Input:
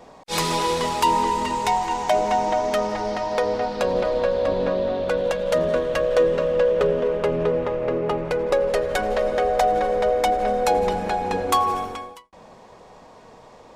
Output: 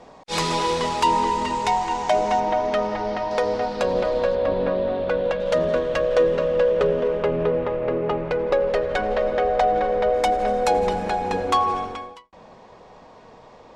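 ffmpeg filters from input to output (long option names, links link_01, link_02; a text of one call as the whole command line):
ffmpeg -i in.wav -af "asetnsamples=nb_out_samples=441:pad=0,asendcmd='2.4 lowpass f 4000;3.31 lowpass f 8900;4.35 lowpass f 3400;5.4 lowpass f 6500;7.23 lowpass f 3900;10.14 lowpass f 9600;11.49 lowpass f 5400',lowpass=7500" out.wav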